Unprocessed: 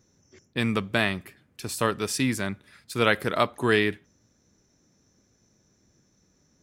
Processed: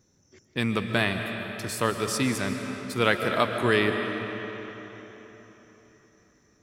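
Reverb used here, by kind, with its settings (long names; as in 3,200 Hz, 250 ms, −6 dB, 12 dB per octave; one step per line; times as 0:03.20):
comb and all-pass reverb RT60 4.1 s, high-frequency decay 0.75×, pre-delay 95 ms, DRR 5 dB
level −1 dB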